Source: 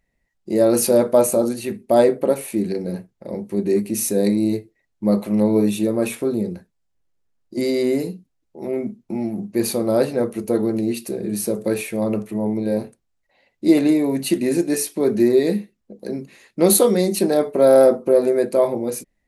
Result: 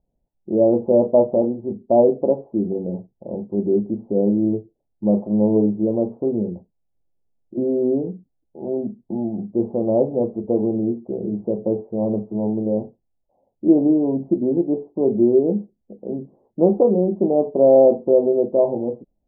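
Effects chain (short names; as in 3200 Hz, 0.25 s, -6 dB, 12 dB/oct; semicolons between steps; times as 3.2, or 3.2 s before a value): steep low-pass 860 Hz 48 dB/oct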